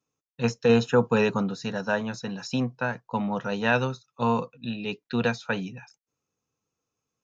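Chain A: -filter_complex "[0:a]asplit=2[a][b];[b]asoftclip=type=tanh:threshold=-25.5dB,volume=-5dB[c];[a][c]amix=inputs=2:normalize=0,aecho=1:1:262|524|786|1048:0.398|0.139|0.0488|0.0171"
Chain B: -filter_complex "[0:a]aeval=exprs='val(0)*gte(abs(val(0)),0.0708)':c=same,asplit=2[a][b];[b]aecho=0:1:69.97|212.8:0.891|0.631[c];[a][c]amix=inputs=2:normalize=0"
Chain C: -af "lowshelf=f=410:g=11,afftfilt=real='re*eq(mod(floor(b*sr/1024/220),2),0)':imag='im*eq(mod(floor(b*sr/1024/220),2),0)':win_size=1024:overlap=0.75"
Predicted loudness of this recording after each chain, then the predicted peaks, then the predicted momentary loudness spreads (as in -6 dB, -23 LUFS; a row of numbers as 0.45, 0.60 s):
-24.0, -24.0, -22.5 LUFS; -6.5, -5.0, -5.0 dBFS; 10, 14, 11 LU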